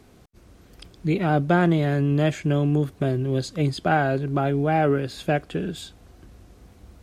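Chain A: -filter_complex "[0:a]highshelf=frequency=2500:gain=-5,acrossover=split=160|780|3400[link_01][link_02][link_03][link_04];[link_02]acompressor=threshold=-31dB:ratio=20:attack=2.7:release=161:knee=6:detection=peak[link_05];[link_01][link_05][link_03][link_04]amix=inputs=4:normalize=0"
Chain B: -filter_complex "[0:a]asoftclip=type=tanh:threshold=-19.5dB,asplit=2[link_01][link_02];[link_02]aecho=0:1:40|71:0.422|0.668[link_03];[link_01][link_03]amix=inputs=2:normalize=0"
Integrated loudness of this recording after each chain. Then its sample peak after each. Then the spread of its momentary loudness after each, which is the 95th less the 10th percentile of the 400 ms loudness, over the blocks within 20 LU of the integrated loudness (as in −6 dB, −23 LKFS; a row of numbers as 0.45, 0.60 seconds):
−28.0, −25.0 LKFS; −12.5, −13.5 dBFS; 9, 6 LU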